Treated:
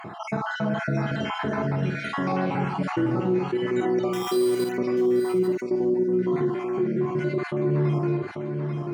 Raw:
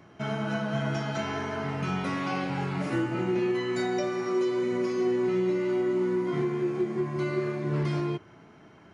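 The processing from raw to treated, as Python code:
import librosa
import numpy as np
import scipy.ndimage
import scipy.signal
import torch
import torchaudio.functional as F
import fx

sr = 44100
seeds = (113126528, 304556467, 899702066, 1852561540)

y = fx.spec_dropout(x, sr, seeds[0], share_pct=48)
y = scipy.signal.sosfilt(scipy.signal.butter(2, 110.0, 'highpass', fs=sr, output='sos'), y)
y = fx.high_shelf(y, sr, hz=2100.0, db=-11.0)
y = fx.sample_hold(y, sr, seeds[1], rate_hz=4400.0, jitter_pct=0, at=(4.13, 4.72))
y = fx.brickwall_bandstop(y, sr, low_hz=980.0, high_hz=4400.0, at=(5.55, 6.19))
y = fx.doubler(y, sr, ms=49.0, db=-8.0)
y = y + 10.0 ** (-11.5 / 20.0) * np.pad(y, (int(839 * sr / 1000.0), 0))[:len(y)]
y = fx.env_flatten(y, sr, amount_pct=50)
y = F.gain(torch.from_numpy(y), 2.0).numpy()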